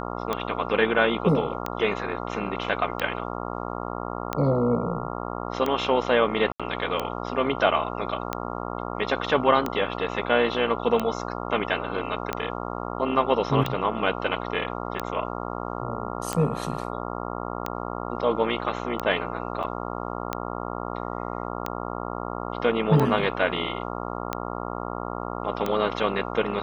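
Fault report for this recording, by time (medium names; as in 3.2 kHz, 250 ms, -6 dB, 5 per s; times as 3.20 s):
buzz 60 Hz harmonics 23 -32 dBFS
tick 45 rpm -12 dBFS
6.52–6.60 s: dropout 76 ms
19.63–19.64 s: dropout 7 ms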